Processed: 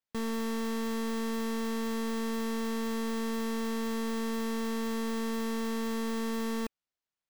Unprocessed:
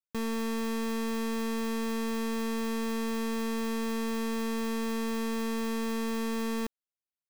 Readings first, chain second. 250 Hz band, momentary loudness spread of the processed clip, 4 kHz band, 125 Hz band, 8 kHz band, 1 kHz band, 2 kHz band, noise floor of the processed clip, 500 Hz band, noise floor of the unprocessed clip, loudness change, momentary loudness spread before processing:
-1.0 dB, 0 LU, -1.0 dB, no reading, -1.0 dB, -1.0 dB, -1.5 dB, under -85 dBFS, -1.0 dB, under -85 dBFS, -1.0 dB, 0 LU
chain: band-stop 2.5 kHz, Q 22; careless resampling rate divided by 4×, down none, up hold; trim -1 dB

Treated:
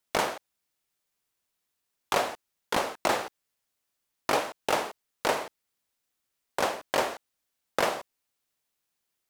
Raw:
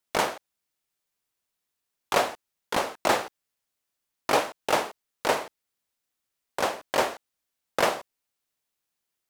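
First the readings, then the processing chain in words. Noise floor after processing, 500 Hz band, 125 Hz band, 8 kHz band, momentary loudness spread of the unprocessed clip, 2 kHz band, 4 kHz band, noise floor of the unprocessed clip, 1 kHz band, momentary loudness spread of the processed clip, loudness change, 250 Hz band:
-82 dBFS, -2.5 dB, -2.0 dB, -2.0 dB, 13 LU, -2.0 dB, -2.0 dB, -83 dBFS, -2.5 dB, 11 LU, -2.5 dB, -2.0 dB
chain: compression 3:1, threshold -24 dBFS, peak gain reduction 6 dB; trim +1.5 dB

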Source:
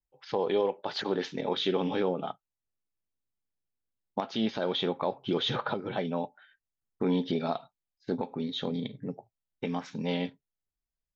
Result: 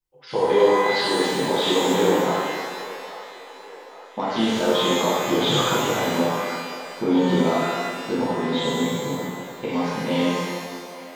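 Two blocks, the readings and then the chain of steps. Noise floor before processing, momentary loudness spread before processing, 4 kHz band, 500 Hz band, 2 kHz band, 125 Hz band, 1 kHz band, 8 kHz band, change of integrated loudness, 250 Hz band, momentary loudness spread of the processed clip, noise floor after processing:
under -85 dBFS, 10 LU, +10.0 dB, +10.5 dB, +15.0 dB, +8.5 dB, +12.5 dB, no reading, +10.0 dB, +9.5 dB, 16 LU, -42 dBFS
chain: feedback echo behind a band-pass 825 ms, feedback 55%, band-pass 1.1 kHz, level -12.5 dB; pitch-shifted reverb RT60 1.7 s, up +12 st, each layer -8 dB, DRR -9 dB

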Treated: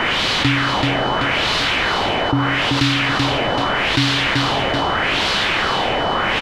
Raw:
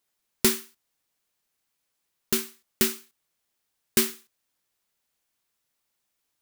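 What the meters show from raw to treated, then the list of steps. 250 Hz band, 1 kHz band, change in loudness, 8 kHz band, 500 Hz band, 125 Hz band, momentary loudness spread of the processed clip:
+14.0 dB, +29.0 dB, +8.5 dB, -1.5 dB, +14.5 dB, +25.0 dB, 2 LU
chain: jump at every zero crossing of -22.5 dBFS; treble shelf 3.6 kHz -11.5 dB; waveshaping leveller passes 1; bass shelf 70 Hz -8.5 dB; LFO low-pass sine 0.8 Hz 770–4100 Hz; frequency shift -100 Hz; on a send: feedback delay 383 ms, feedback 30%, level -7 dB; on the sum: whistle 3 kHz -41 dBFS; level flattener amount 70%; trim +2 dB

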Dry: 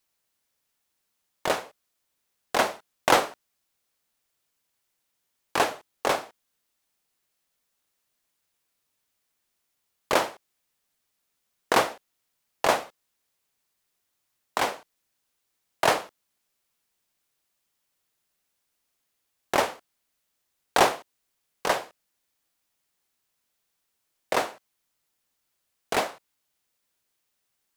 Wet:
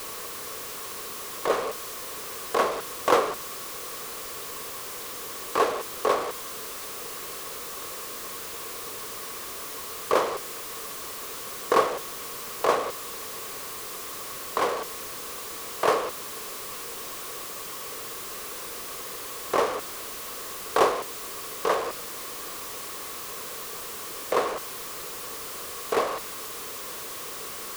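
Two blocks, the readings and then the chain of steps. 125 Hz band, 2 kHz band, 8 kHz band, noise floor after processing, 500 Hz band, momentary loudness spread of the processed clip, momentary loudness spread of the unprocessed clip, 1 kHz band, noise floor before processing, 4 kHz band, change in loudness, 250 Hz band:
-1.5 dB, -2.5 dB, +5.5 dB, -37 dBFS, +3.0 dB, 9 LU, 11 LU, +0.5 dB, -78 dBFS, 0.0 dB, -3.5 dB, 0.0 dB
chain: jump at every zero crossing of -23 dBFS; small resonant body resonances 450/1100 Hz, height 13 dB, ringing for 20 ms; trim -8.5 dB

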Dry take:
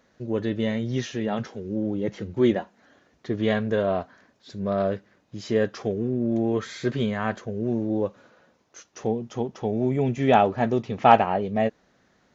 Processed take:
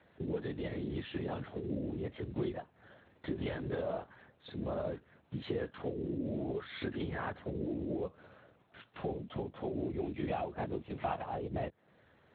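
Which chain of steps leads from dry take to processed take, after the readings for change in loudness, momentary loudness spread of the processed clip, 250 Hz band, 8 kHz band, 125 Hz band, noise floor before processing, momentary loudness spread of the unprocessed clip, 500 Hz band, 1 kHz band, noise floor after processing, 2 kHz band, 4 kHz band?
-14.0 dB, 7 LU, -13.0 dB, no reading, -11.0 dB, -65 dBFS, 12 LU, -13.5 dB, -18.0 dB, -68 dBFS, -13.5 dB, -12.5 dB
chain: compression 8:1, threshold -33 dBFS, peak gain reduction 23 dB; LPC vocoder at 8 kHz whisper; Speex 21 kbps 16 kHz

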